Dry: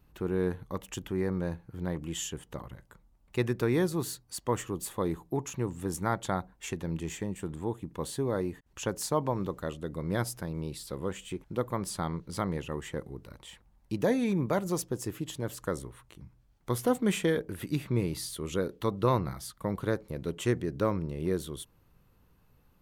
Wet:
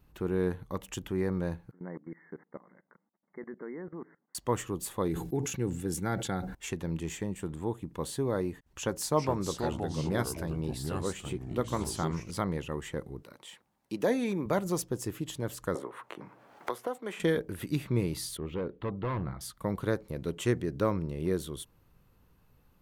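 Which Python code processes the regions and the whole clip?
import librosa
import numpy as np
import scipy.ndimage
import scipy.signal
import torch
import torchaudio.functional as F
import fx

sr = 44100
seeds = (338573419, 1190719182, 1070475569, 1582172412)

y = fx.chain(x, sr, fx.brickwall_bandpass(low_hz=160.0, high_hz=2200.0),
    fx.level_steps(step_db=20), at=(1.71, 4.35))
y = fx.chain(y, sr, fx.peak_eq(hz=1000.0, db=-14.5, octaves=0.38),
    fx.notch_comb(f0_hz=620.0),
    fx.sustainer(db_per_s=62.0), at=(5.08, 6.55))
y = fx.chain(y, sr, fx.echo_pitch(ms=362, semitones=-4, count=2, db_per_echo=-6.0),
    fx.doubler(ms=13.0, db=-13.5), at=(8.65, 12.31))
y = fx.chain(y, sr, fx.highpass(hz=230.0, slope=12),
    fx.clip_hard(threshold_db=-17.0), at=(13.22, 14.46))
y = fx.chain(y, sr, fx.highpass(hz=530.0, slope=12),
    fx.high_shelf(hz=2200.0, db=-11.5),
    fx.band_squash(depth_pct=100), at=(15.75, 17.2))
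y = fx.chain(y, sr, fx.resample_bad(factor=2, down='none', up='hold'),
    fx.overload_stage(gain_db=28.0),
    fx.air_absorb(metres=420.0), at=(18.37, 19.41))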